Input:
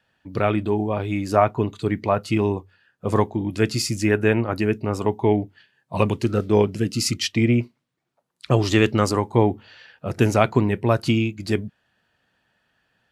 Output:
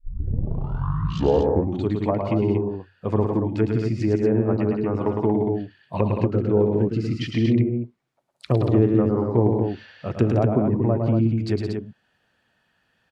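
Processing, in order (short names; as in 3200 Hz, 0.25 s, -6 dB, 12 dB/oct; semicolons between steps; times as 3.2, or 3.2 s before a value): tape start at the beginning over 1.88 s; treble ducked by the level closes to 590 Hz, closed at -16.5 dBFS; loudspeakers at several distances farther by 37 m -5 dB, 58 m -8 dB, 80 m -6 dB; gain -1.5 dB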